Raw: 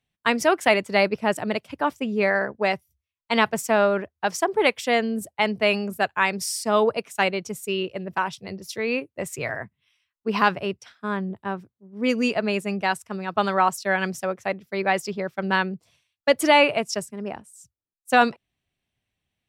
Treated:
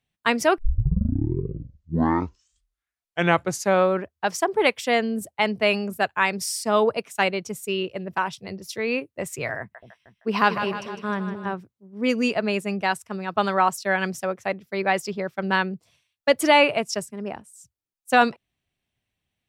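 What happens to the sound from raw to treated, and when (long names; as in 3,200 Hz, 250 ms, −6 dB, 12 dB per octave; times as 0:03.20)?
0:00.58: tape start 3.55 s
0:09.59–0:11.54: echo with a time of its own for lows and highs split 600 Hz, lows 232 ms, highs 155 ms, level −9 dB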